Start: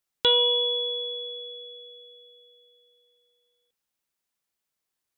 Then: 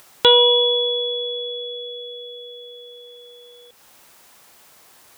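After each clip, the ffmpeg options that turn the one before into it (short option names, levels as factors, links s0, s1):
-filter_complex "[0:a]highpass=43,equalizer=f=810:w=0.66:g=6.5,asplit=2[s0][s1];[s1]acompressor=mode=upward:threshold=0.0631:ratio=2.5,volume=0.944[s2];[s0][s2]amix=inputs=2:normalize=0"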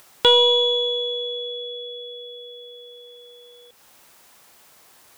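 -af "aeval=exprs='0.891*(cos(1*acos(clip(val(0)/0.891,-1,1)))-cos(1*PI/2))+0.0316*(cos(4*acos(clip(val(0)/0.891,-1,1)))-cos(4*PI/2))':c=same,volume=0.794"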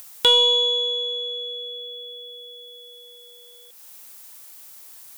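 -af "crystalizer=i=3.5:c=0,volume=0.501"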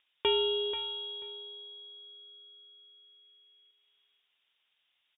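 -af "adynamicsmooth=sensitivity=5:basefreq=980,aecho=1:1:486|972:0.299|0.0537,lowpass=f=3200:t=q:w=0.5098,lowpass=f=3200:t=q:w=0.6013,lowpass=f=3200:t=q:w=0.9,lowpass=f=3200:t=q:w=2.563,afreqshift=-3800,volume=0.398"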